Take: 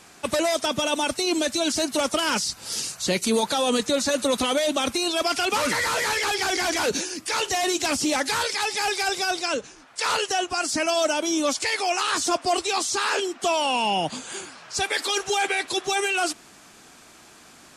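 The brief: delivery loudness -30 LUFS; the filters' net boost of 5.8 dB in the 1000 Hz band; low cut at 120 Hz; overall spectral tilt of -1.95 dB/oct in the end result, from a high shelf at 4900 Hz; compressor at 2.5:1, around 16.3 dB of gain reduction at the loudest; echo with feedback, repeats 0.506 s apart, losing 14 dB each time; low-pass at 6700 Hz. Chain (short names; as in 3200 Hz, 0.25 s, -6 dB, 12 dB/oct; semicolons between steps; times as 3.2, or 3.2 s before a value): HPF 120 Hz; LPF 6700 Hz; bell 1000 Hz +8 dB; high shelf 4900 Hz -4.5 dB; compressor 2.5:1, threshold -41 dBFS; feedback echo 0.506 s, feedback 20%, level -14 dB; gain +6.5 dB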